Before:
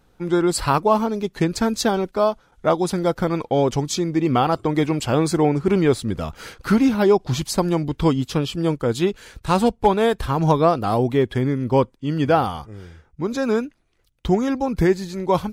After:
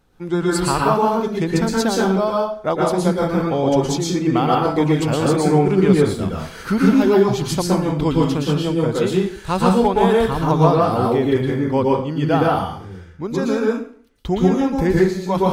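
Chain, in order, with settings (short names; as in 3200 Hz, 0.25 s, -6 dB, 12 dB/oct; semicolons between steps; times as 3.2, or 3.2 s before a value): plate-style reverb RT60 0.5 s, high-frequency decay 0.8×, pre-delay 0.105 s, DRR -3 dB; gain -2.5 dB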